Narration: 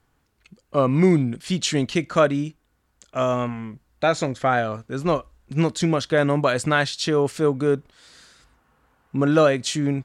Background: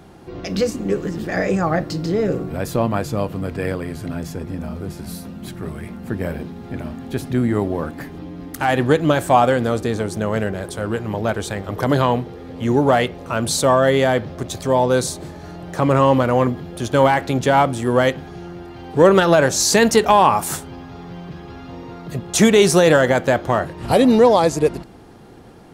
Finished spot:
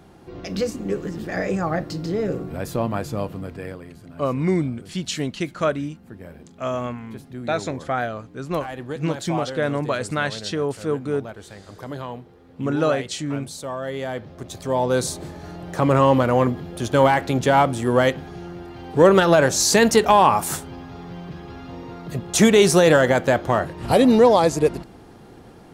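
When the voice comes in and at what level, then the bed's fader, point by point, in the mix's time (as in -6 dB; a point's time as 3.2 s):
3.45 s, -4.0 dB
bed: 3.26 s -4.5 dB
4.04 s -15.5 dB
13.7 s -15.5 dB
15.14 s -1.5 dB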